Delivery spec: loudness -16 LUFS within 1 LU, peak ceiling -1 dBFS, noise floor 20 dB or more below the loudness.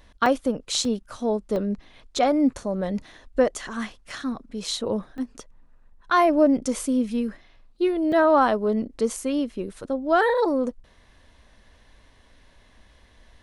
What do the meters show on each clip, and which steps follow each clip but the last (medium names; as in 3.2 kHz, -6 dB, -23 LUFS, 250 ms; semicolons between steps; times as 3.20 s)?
dropouts 6; longest dropout 2.4 ms; loudness -24.0 LUFS; peak level -7.5 dBFS; loudness target -16.0 LUFS
-> interpolate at 0.26/0.85/1.56/4.10/5.18/8.12 s, 2.4 ms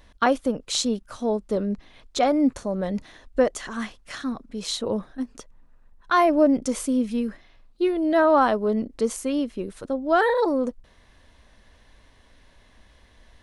dropouts 0; loudness -24.0 LUFS; peak level -7.5 dBFS; loudness target -16.0 LUFS
-> trim +8 dB; peak limiter -1 dBFS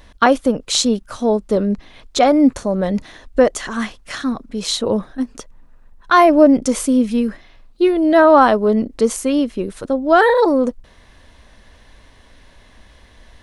loudness -16.5 LUFS; peak level -1.0 dBFS; noise floor -48 dBFS